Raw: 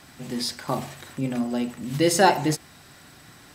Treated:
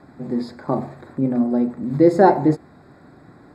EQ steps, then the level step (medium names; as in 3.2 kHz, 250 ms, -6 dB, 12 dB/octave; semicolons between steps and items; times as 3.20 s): boxcar filter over 15 samples; peaking EQ 340 Hz +8.5 dB 2.4 oct; 0.0 dB